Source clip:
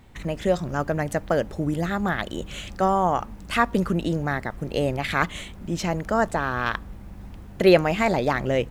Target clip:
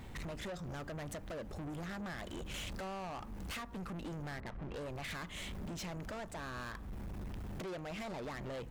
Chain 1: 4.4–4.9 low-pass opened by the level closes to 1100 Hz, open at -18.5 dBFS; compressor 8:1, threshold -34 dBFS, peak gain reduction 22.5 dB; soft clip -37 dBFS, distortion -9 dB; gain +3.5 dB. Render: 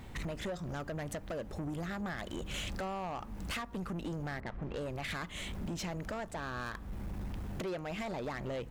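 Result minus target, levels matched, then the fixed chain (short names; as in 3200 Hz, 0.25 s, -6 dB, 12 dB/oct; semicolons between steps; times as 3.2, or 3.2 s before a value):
soft clip: distortion -4 dB
4.4–4.9 low-pass opened by the level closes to 1100 Hz, open at -18.5 dBFS; compressor 8:1, threshold -34 dBFS, peak gain reduction 22.5 dB; soft clip -43.5 dBFS, distortion -5 dB; gain +3.5 dB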